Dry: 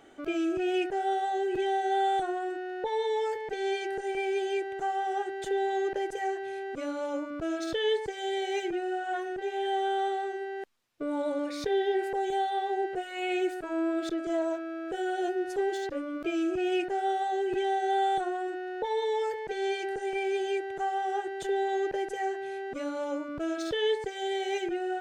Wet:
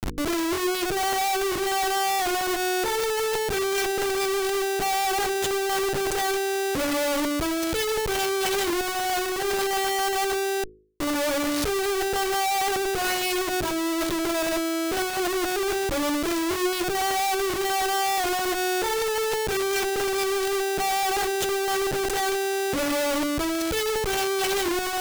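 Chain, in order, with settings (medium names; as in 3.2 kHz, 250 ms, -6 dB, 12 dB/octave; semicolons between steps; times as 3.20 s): Schmitt trigger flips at -48.5 dBFS; tone controls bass 0 dB, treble +3 dB; de-hum 52.73 Hz, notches 9; peak limiter -27.5 dBFS, peak gain reduction 6 dB; trim +8.5 dB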